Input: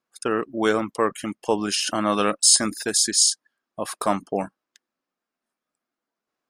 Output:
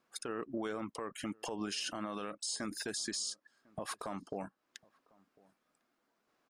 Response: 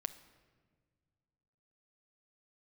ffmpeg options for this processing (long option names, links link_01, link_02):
-filter_complex "[0:a]acrossover=split=9800[link_01][link_02];[link_02]acompressor=threshold=-40dB:ratio=4:attack=1:release=60[link_03];[link_01][link_03]amix=inputs=2:normalize=0,highshelf=frequency=5900:gain=-6.5,acompressor=threshold=-36dB:ratio=10,alimiter=level_in=11.5dB:limit=-24dB:level=0:latency=1:release=101,volume=-11.5dB,asplit=2[link_04][link_05];[link_05]adelay=1050,volume=-26dB,highshelf=frequency=4000:gain=-23.6[link_06];[link_04][link_06]amix=inputs=2:normalize=0,volume=7dB"